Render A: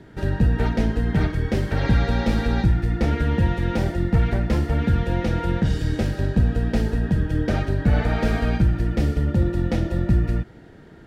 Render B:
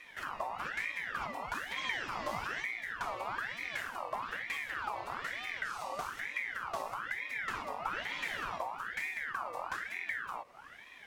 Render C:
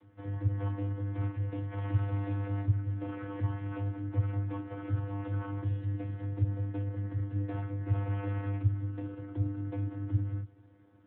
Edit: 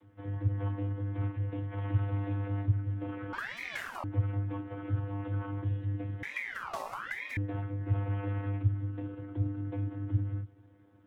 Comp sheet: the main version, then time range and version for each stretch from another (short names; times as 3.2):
C
3.33–4.04 from B
6.23–7.37 from B
not used: A